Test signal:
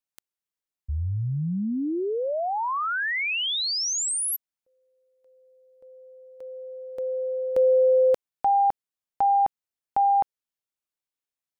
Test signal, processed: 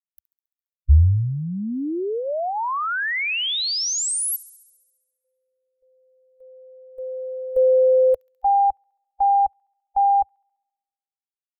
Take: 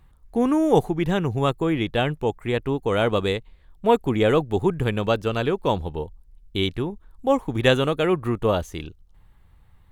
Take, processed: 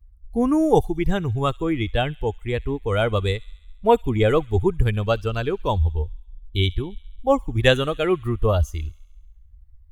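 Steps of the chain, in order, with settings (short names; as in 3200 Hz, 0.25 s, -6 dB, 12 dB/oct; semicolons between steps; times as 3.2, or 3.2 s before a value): per-bin expansion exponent 1.5; resonant low shelf 100 Hz +13 dB, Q 1.5; thin delay 68 ms, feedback 67%, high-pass 2600 Hz, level -20 dB; gain +3.5 dB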